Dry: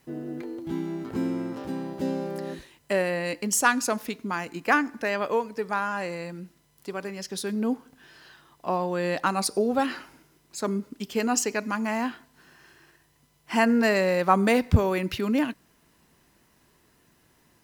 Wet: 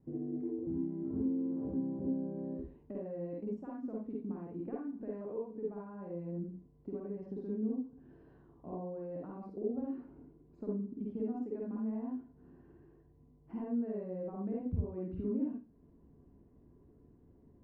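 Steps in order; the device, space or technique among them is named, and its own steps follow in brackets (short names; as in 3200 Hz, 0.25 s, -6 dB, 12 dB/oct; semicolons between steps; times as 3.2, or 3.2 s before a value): television next door (compressor 4:1, threshold -39 dBFS, peak gain reduction 21.5 dB; LPF 310 Hz 12 dB/oct; reverb RT60 0.30 s, pre-delay 46 ms, DRR -4 dB); gain +1 dB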